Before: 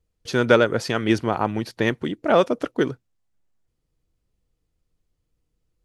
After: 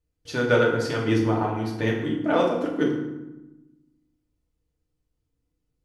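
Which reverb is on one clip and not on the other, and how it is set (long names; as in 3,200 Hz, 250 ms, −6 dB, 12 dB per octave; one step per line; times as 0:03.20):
feedback delay network reverb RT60 1 s, low-frequency decay 1.55×, high-frequency decay 0.65×, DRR −2.5 dB
level −8 dB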